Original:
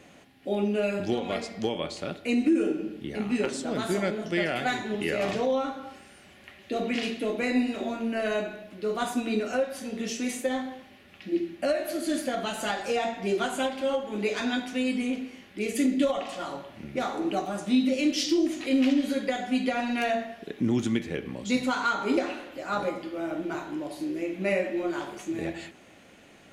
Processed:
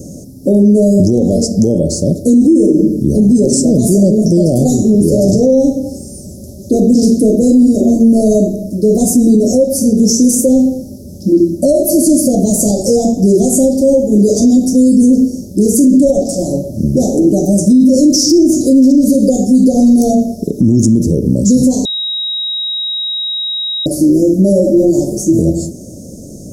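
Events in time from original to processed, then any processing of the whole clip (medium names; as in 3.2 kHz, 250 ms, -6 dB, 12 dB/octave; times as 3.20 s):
21.85–23.86 s: bleep 3.81 kHz -12.5 dBFS
whole clip: Chebyshev band-stop 590–5400 Hz, order 4; tone controls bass +11 dB, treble +7 dB; loudness maximiser +21.5 dB; trim -1 dB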